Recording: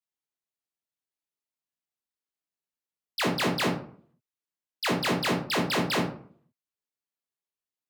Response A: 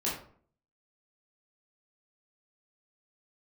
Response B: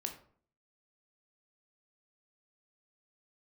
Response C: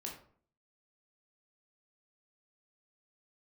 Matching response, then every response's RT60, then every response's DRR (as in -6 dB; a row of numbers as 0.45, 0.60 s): C; 0.50, 0.50, 0.50 s; -7.0, 4.0, -1.5 dB